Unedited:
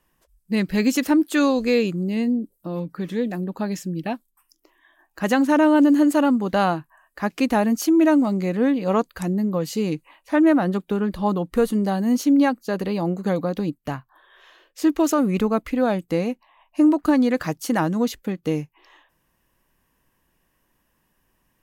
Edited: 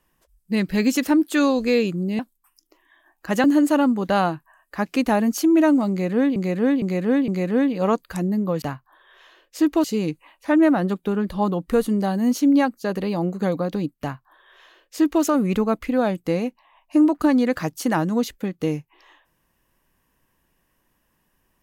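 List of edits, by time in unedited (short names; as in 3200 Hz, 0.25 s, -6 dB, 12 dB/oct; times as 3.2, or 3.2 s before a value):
2.19–4.12 cut
5.37–5.88 cut
8.34–8.8 loop, 4 plays
13.85–15.07 copy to 9.68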